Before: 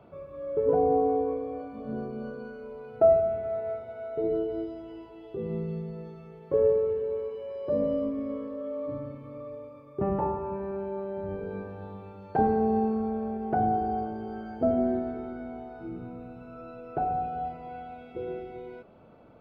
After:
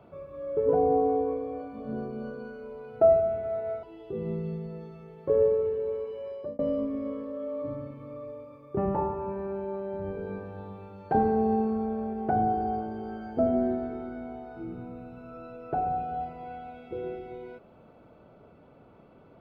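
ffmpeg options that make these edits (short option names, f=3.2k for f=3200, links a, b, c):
-filter_complex "[0:a]asplit=3[a][b][c];[a]atrim=end=3.832[d];[b]atrim=start=5.068:end=7.83,asetpts=PTS-STARTPTS,afade=t=out:st=2.462:d=0.3[e];[c]atrim=start=7.83,asetpts=PTS-STARTPTS,afade=t=in:d=0.004:c=hsin[f];[e][f]concat=n=2:v=0:a=1[g];[d][g]acrossfade=d=0.004:c1=hsin:c2=hsin"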